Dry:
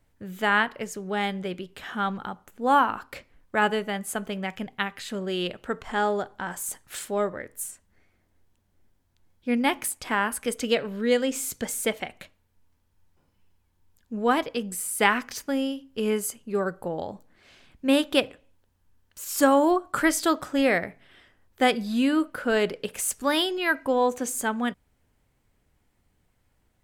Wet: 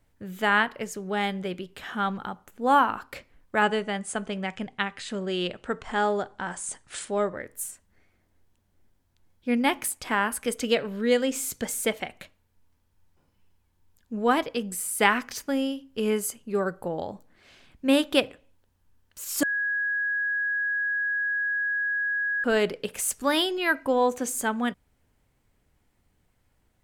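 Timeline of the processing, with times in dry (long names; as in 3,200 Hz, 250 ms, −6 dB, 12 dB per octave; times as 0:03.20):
0:03.62–0:07.36: Butterworth low-pass 10,000 Hz 96 dB per octave
0:19.43–0:22.44: beep over 1,660 Hz −24 dBFS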